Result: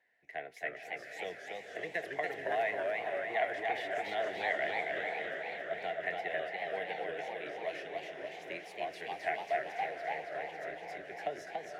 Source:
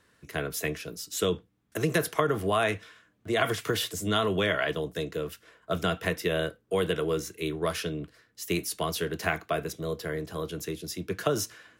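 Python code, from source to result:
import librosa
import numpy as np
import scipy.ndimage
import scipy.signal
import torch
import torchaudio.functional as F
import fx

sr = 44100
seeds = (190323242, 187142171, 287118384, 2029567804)

y = fx.double_bandpass(x, sr, hz=1200.0, octaves=1.4)
y = fx.echo_diffused(y, sr, ms=518, feedback_pct=52, wet_db=-7.0)
y = fx.echo_warbled(y, sr, ms=279, feedback_pct=65, rate_hz=2.8, cents=209, wet_db=-3.0)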